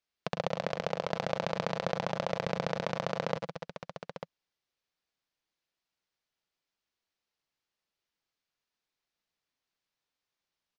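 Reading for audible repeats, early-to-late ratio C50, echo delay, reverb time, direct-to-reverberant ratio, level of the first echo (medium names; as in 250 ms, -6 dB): 3, no reverb, 105 ms, no reverb, no reverb, -9.5 dB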